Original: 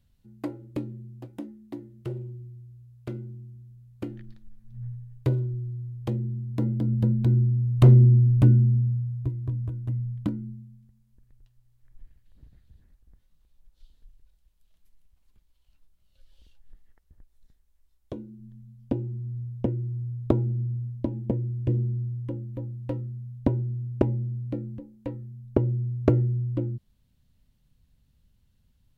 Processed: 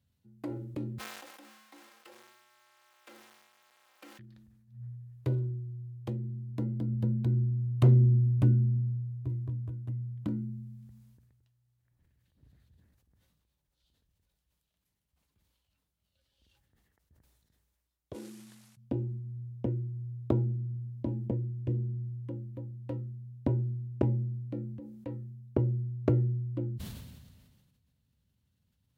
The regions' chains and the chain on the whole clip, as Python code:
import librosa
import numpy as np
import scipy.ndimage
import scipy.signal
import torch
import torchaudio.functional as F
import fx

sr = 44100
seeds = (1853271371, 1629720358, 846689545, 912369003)

y = fx.chain(x, sr, fx.zero_step(step_db=-43.5),
    fx.highpass(hz=1000.0, slope=12),
    fx.comb(ms=3.8, depth=0.83), at=(0.98, 4.19))
y = fx.chain(y, sr, fx.cvsd(bps=64000),
    fx.highpass(hz=640.0, slope=12), at=(18.13, 18.77))
y = scipy.signal.sosfilt(scipy.signal.butter(4, 68.0, 'highpass', fs=sr, output='sos'), y)
y = fx.sustainer(y, sr, db_per_s=35.0)
y = y * librosa.db_to_amplitude(-7.0)